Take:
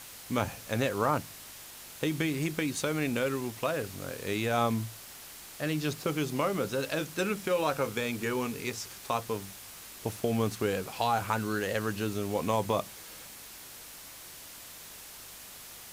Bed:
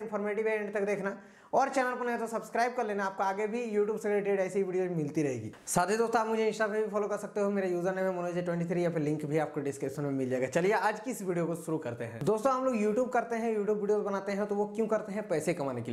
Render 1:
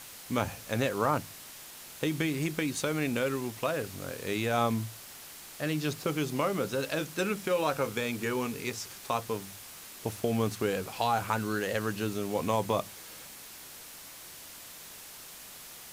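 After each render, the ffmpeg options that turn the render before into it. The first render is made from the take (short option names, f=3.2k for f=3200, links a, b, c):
-af "bandreject=f=50:t=h:w=4,bandreject=f=100:t=h:w=4"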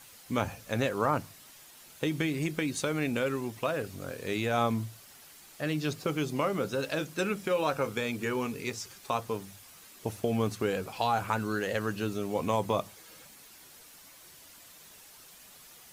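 -af "afftdn=nr=8:nf=-48"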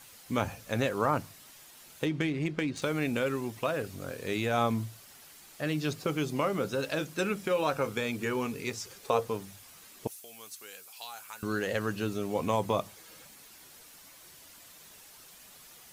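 -filter_complex "[0:a]asettb=1/sr,asplit=3[a][b][c];[a]atrim=end=2.054[d];[b]atrim=start=2.05:end=2.82,asetpts=PTS-STARTPTS,afade=t=in:d=0.004:c=qsin,afade=t=out:st=0.766:d=0.004:c=qsin,adynamicsmooth=sensitivity=5.5:basefreq=2.9k[e];[c]atrim=start=2.816[f];[d][e]acrossfade=d=0.004:c1=hsin:c2=qsin[g];[g][f]acrossfade=d=0.004:c1=qsin:c2=hsin,asettb=1/sr,asplit=3[h][i][j];[h]atrim=end=8.864[k];[i]atrim=start=8.86:end=9.28,asetpts=PTS-STARTPTS,afade=t=in:d=0.004:c=qsin,afade=t=out:st=0.416:d=0.004:c=qsin,equalizer=f=470:w=4:g=14.5[l];[j]atrim=start=9.276[m];[k][l]acrossfade=d=0.004:c1=hsin:c2=qsin[n];[n][m]acrossfade=d=0.004:c1=qsin:c2=hsin,asettb=1/sr,asplit=3[o][p][q];[o]atrim=end=10.074[r];[p]atrim=start=10.07:end=11.43,asetpts=PTS-STARTPTS,afade=t=in:d=0.004:c=qsin,afade=t=out:st=1.356:d=0.004:c=qsin,aderivative[s];[q]atrim=start=11.426[t];[r][s]acrossfade=d=0.004:c1=hsin:c2=qsin[u];[u][t]acrossfade=d=0.004:c1=qsin:c2=hsin"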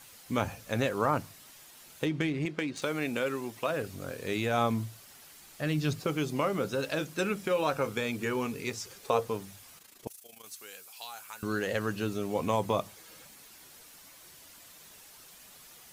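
-filter_complex "[0:a]asettb=1/sr,asplit=3[a][b][c];[a]atrim=end=2.454[d];[b]atrim=start=2.45:end=3.7,asetpts=PTS-STARTPTS,afade=t=in:d=0.004:c=qsin,afade=t=out:st=1.246:d=0.004:c=qsin,highpass=f=240:p=1[e];[c]atrim=start=3.696[f];[d][e]acrossfade=d=0.004:c1=hsin:c2=qsin[g];[g][f]acrossfade=d=0.004:c1=qsin:c2=hsin,asettb=1/sr,asplit=3[h][i][j];[h]atrim=end=5.314[k];[i]atrim=start=5.31:end=6,asetpts=PTS-STARTPTS,afade=t=in:d=0.004:c=qsin,afade=t=out:st=0.686:d=0.004:c=qsin,asubboost=boost=7.5:cutoff=240[l];[j]atrim=start=5.996[m];[k][l]acrossfade=d=0.004:c1=hsin:c2=qsin[n];[n][m]acrossfade=d=0.004:c1=qsin:c2=hsin,asettb=1/sr,asplit=3[o][p][q];[o]atrim=end=9.784[r];[p]atrim=start=9.78:end=10.46,asetpts=PTS-STARTPTS,afade=t=in:d=0.004:c=qsin,afade=t=out:st=0.676:d=0.004:c=qsin,tremolo=f=27:d=0.75[s];[q]atrim=start=10.456[t];[r][s]acrossfade=d=0.004:c1=hsin:c2=qsin[u];[u][t]acrossfade=d=0.004:c1=qsin:c2=hsin"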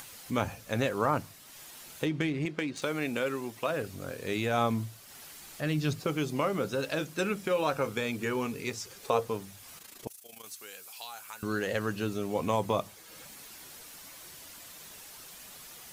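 -af "acompressor=mode=upward:threshold=-41dB:ratio=2.5"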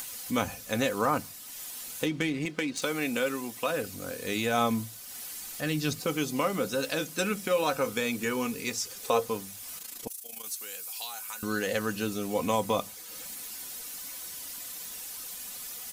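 -af "highshelf=f=4.4k:g=10,aecho=1:1:4:0.41"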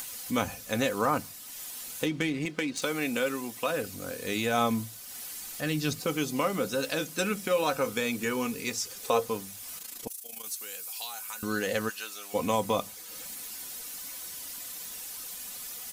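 -filter_complex "[0:a]asplit=3[a][b][c];[a]afade=t=out:st=11.88:d=0.02[d];[b]highpass=1.1k,afade=t=in:st=11.88:d=0.02,afade=t=out:st=12.33:d=0.02[e];[c]afade=t=in:st=12.33:d=0.02[f];[d][e][f]amix=inputs=3:normalize=0"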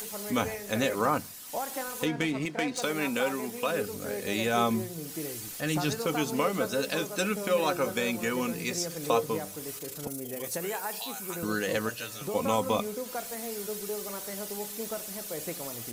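-filter_complex "[1:a]volume=-7.5dB[a];[0:a][a]amix=inputs=2:normalize=0"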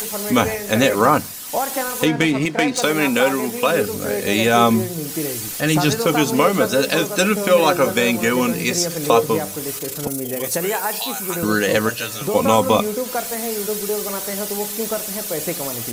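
-af "volume=12dB,alimiter=limit=-1dB:level=0:latency=1"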